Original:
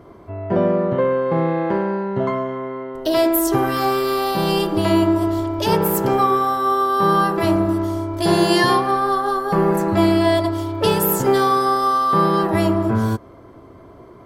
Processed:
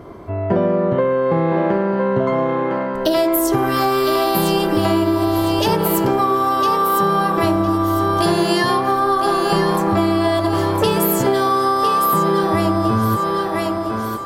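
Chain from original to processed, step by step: thinning echo 1007 ms, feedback 28%, high-pass 380 Hz, level -6.5 dB; compression, threshold -20 dBFS, peak gain reduction 9.5 dB; trim +6.5 dB

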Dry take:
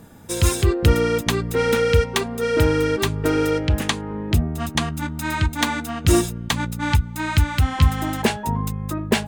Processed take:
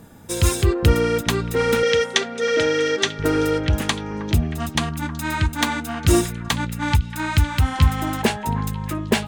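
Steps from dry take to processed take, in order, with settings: 1.83–3.19 s: cabinet simulation 260–7600 Hz, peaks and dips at 330 Hz -4 dB, 550 Hz +5 dB, 1 kHz -9 dB, 1.9 kHz +6 dB, 3.4 kHz +7 dB, 5.9 kHz +8 dB; repeats whose band climbs or falls 314 ms, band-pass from 1.2 kHz, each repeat 0.7 oct, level -11 dB

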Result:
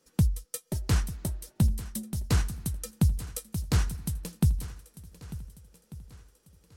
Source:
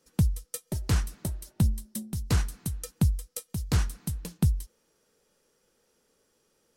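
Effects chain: shuffle delay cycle 1493 ms, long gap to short 1.5:1, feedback 30%, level -16 dB

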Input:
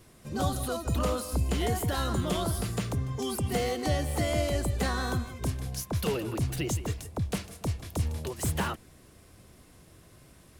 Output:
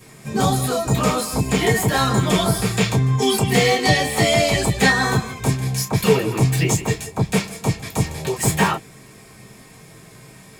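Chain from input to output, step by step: 2.67–4.88 s: dynamic bell 3.4 kHz, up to +6 dB, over -51 dBFS, Q 1.1; reverberation, pre-delay 3 ms, DRR -7 dB; trim +8.5 dB

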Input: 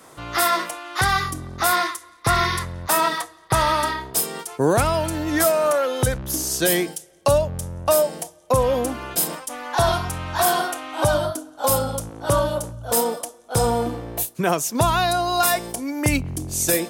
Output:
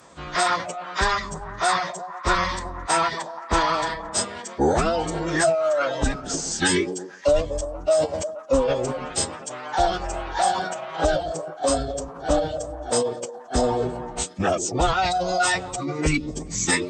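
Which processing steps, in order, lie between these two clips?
reverb removal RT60 0.6 s; repeats whose band climbs or falls 121 ms, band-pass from 320 Hz, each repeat 0.7 oct, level -6.5 dB; formant-preserving pitch shift -11.5 st

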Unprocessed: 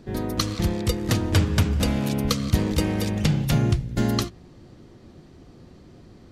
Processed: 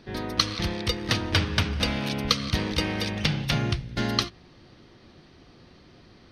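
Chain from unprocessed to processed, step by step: Savitzky-Golay filter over 15 samples; tilt shelf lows -6.5 dB, about 920 Hz

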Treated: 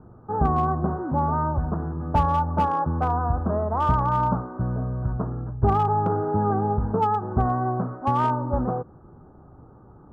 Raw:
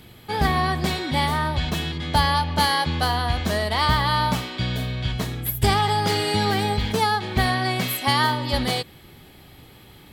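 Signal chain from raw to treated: steep low-pass 1.4 kHz 72 dB/octave; slew-rate limiter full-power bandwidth 120 Hz

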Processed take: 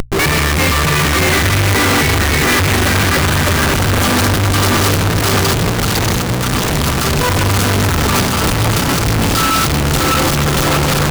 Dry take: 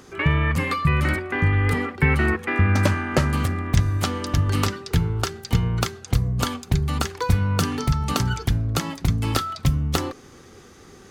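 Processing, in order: backward echo that repeats 317 ms, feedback 58%, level -2 dB; AM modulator 62 Hz, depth 35%; fuzz box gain 42 dB, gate -39 dBFS; two-band feedback delay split 920 Hz, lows 436 ms, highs 151 ms, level -12.5 dB; on a send at -8 dB: reverberation RT60 3.3 s, pre-delay 190 ms; on the sum: Schmitt trigger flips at -31 dBFS; hum notches 60/120 Hz; peak limiter -15 dBFS, peak gain reduction 8 dB; trim +4.5 dB

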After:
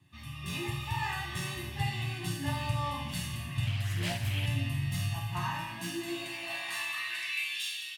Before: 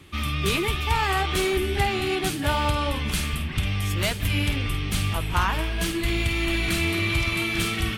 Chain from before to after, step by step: comb 1.1 ms, depth 88%; level rider gain up to 10 dB; high-pass sweep 96 Hz -> 3.3 kHz, 5.22–7.63 s; chord resonator A#2 minor, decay 0.69 s; Schroeder reverb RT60 3.7 s, combs from 29 ms, DRR 14.5 dB; 3.66–4.46 s: loudspeaker Doppler distortion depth 0.34 ms

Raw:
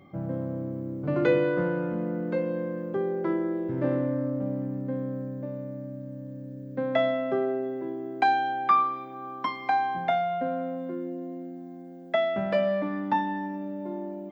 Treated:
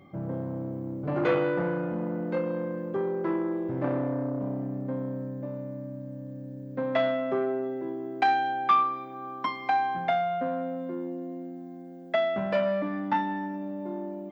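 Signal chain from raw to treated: transformer saturation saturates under 1 kHz

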